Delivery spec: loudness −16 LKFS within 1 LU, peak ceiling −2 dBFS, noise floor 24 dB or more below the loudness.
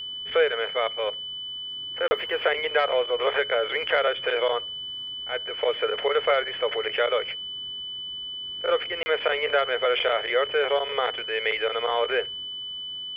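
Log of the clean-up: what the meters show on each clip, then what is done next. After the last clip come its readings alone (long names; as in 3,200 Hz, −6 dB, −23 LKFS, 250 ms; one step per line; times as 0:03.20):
number of dropouts 2; longest dropout 30 ms; interfering tone 3,000 Hz; level of the tone −32 dBFS; integrated loudness −25.5 LKFS; sample peak −8.5 dBFS; target loudness −16.0 LKFS
→ repair the gap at 0:02.08/0:09.03, 30 ms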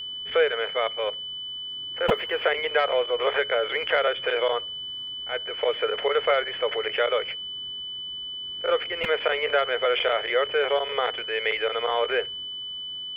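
number of dropouts 0; interfering tone 3,000 Hz; level of the tone −32 dBFS
→ notch filter 3,000 Hz, Q 30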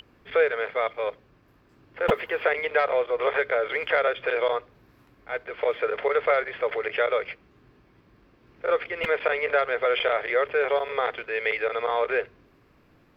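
interfering tone none found; integrated loudness −25.5 LKFS; sample peak −9.0 dBFS; target loudness −16.0 LKFS
→ level +9.5 dB
brickwall limiter −2 dBFS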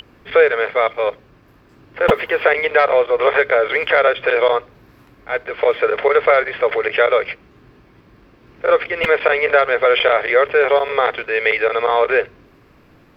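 integrated loudness −16.0 LKFS; sample peak −2.0 dBFS; background noise floor −50 dBFS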